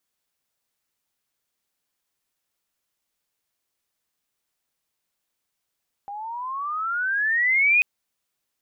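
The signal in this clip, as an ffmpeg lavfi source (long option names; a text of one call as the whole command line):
ffmpeg -f lavfi -i "aevalsrc='pow(10,(-14+17.5*(t/1.74-1))/20)*sin(2*PI*794*1.74/(20*log(2)/12)*(exp(20*log(2)/12*t/1.74)-1))':duration=1.74:sample_rate=44100" out.wav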